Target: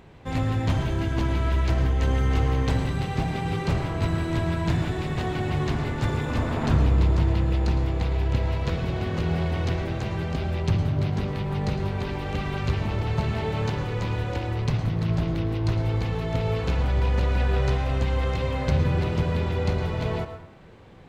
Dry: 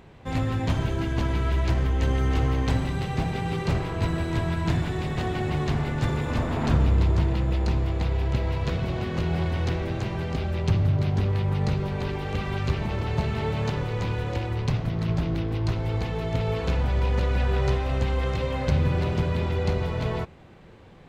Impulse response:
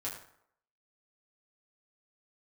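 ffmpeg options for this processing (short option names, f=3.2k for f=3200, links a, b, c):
-filter_complex "[0:a]asplit=2[a][b];[1:a]atrim=start_sample=2205,adelay=108[c];[b][c]afir=irnorm=-1:irlink=0,volume=-10.5dB[d];[a][d]amix=inputs=2:normalize=0"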